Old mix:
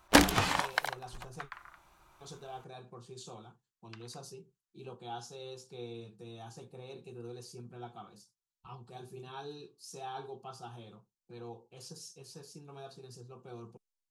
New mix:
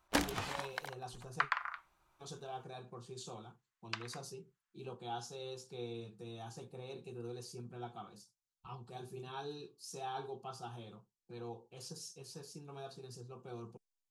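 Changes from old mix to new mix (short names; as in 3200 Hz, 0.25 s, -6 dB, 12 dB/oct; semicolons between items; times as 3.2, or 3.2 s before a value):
first sound -11.0 dB; second sound +12.0 dB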